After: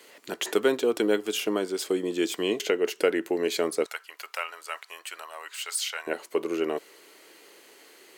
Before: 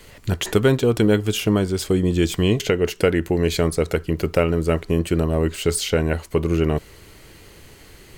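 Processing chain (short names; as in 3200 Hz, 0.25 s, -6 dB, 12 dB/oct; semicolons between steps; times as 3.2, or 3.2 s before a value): HPF 290 Hz 24 dB/oct, from 3.86 s 910 Hz, from 6.07 s 320 Hz; gain -4.5 dB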